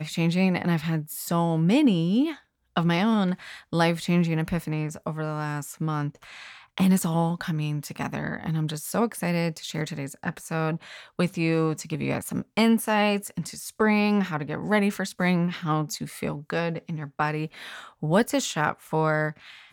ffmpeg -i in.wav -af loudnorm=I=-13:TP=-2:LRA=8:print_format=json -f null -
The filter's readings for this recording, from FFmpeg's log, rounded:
"input_i" : "-26.1",
"input_tp" : "-8.9",
"input_lra" : "3.8",
"input_thresh" : "-36.4",